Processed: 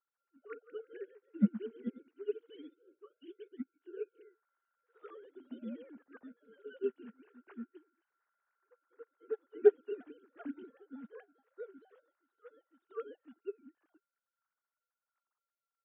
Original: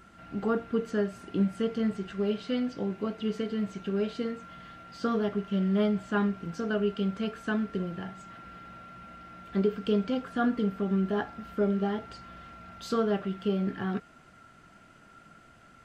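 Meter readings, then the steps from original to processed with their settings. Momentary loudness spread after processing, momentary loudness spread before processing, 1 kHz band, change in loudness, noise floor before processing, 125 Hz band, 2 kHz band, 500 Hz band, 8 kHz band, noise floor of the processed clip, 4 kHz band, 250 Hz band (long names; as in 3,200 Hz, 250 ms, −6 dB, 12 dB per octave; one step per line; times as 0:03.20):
22 LU, 18 LU, −21.0 dB, −8.0 dB, −56 dBFS, below −15 dB, −18.0 dB, −6.5 dB, can't be measured, below −85 dBFS, below −20 dB, −13.5 dB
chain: three sine waves on the formant tracks
delay with pitch and tempo change per echo 199 ms, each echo +1 semitone, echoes 3, each echo −6 dB
expander for the loud parts 2.5 to 1, over −41 dBFS
level −2 dB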